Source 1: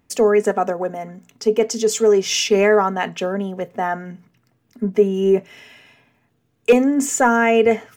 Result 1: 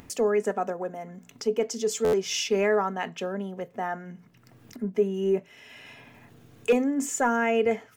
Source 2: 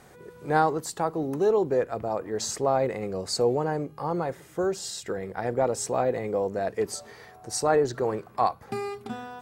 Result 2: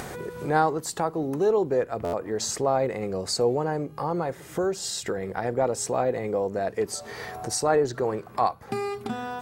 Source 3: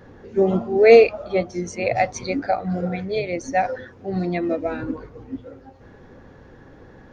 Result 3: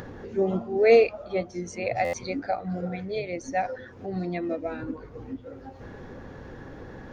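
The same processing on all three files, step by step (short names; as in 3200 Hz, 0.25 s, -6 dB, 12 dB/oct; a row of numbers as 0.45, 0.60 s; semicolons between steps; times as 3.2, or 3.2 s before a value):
upward compressor, threshold -24 dBFS; stuck buffer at 2.04, samples 512, times 7; match loudness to -27 LUFS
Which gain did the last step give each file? -9.0, +0.5, -6.5 dB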